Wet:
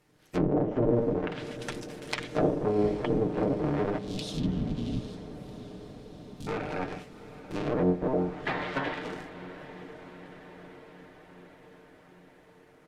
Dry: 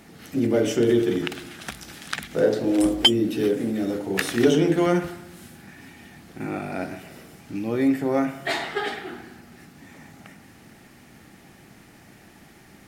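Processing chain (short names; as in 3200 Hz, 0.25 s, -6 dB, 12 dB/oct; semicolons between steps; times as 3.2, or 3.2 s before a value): cycle switcher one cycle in 3, inverted; 3.98–6.47 elliptic band-stop 240–3400 Hz; treble ducked by the level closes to 510 Hz, closed at -18 dBFS; gate -40 dBFS, range -15 dB; comb 6.6 ms, depth 44%; diffused feedback echo 0.747 s, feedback 67%, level -14.5 dB; gain -4 dB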